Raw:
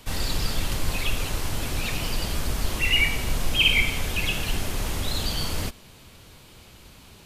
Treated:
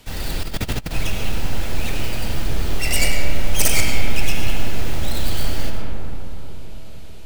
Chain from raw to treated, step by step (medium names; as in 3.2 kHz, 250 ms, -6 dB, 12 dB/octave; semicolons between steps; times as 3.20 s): tracing distortion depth 0.42 ms; peaking EQ 1.1 kHz -6.5 dB 0.26 oct; algorithmic reverb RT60 4.1 s, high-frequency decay 0.25×, pre-delay 60 ms, DRR 0.5 dB; 0.43–0.91 s: compressor with a negative ratio -23 dBFS, ratio -0.5